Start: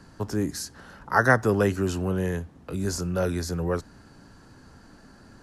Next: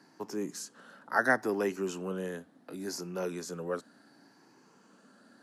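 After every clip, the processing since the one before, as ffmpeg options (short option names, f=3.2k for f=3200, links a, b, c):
-af "afftfilt=real='re*pow(10,6/40*sin(2*PI*(0.76*log(max(b,1)*sr/1024/100)/log(2)-(0.7)*(pts-256)/sr)))':imag='im*pow(10,6/40*sin(2*PI*(0.76*log(max(b,1)*sr/1024/100)/log(2)-(0.7)*(pts-256)/sr)))':win_size=1024:overlap=0.75,highpass=f=200:w=0.5412,highpass=f=200:w=1.3066,volume=-7.5dB"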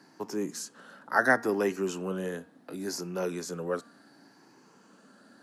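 -af "bandreject=f=233.8:t=h:w=4,bandreject=f=467.6:t=h:w=4,bandreject=f=701.4:t=h:w=4,bandreject=f=935.2:t=h:w=4,bandreject=f=1.169k:t=h:w=4,bandreject=f=1.4028k:t=h:w=4,bandreject=f=1.6366k:t=h:w=4,bandreject=f=1.8704k:t=h:w=4,bandreject=f=2.1042k:t=h:w=4,bandreject=f=2.338k:t=h:w=4,bandreject=f=2.5718k:t=h:w=4,volume=3dB"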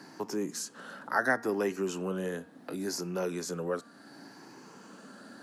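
-af "acompressor=threshold=-52dB:ratio=1.5,volume=7.5dB"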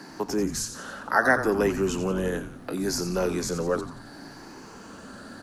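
-filter_complex "[0:a]asplit=6[a][b][c][d][e][f];[b]adelay=88,afreqshift=-140,volume=-10dB[g];[c]adelay=176,afreqshift=-280,volume=-16.2dB[h];[d]adelay=264,afreqshift=-420,volume=-22.4dB[i];[e]adelay=352,afreqshift=-560,volume=-28.6dB[j];[f]adelay=440,afreqshift=-700,volume=-34.8dB[k];[a][g][h][i][j][k]amix=inputs=6:normalize=0,volume=6.5dB"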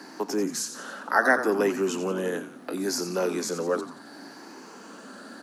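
-af "highpass=f=210:w=0.5412,highpass=f=210:w=1.3066"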